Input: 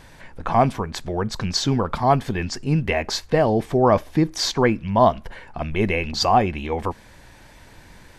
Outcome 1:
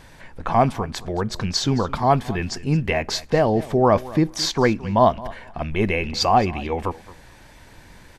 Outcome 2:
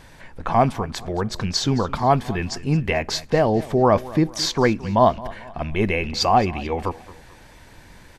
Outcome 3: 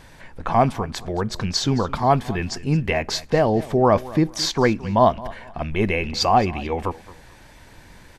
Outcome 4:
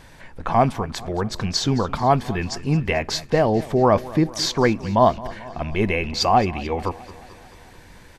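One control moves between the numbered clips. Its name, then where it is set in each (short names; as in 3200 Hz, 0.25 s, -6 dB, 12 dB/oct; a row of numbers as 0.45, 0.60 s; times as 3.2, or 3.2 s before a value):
feedback echo, feedback: 16, 41, 26, 62%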